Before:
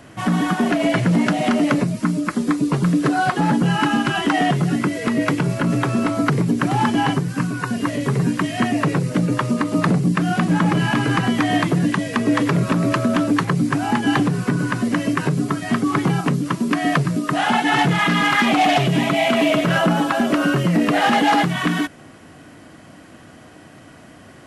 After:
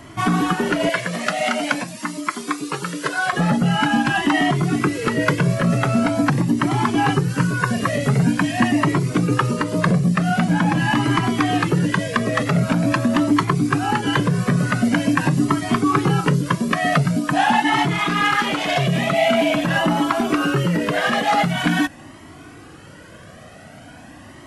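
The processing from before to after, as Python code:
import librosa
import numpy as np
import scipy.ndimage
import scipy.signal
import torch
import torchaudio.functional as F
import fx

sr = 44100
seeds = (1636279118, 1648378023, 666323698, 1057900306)

y = fx.highpass(x, sr, hz=1100.0, slope=6, at=(0.89, 3.33))
y = fx.rider(y, sr, range_db=3, speed_s=0.5)
y = fx.comb_cascade(y, sr, direction='rising', hz=0.45)
y = F.gain(torch.from_numpy(y), 5.5).numpy()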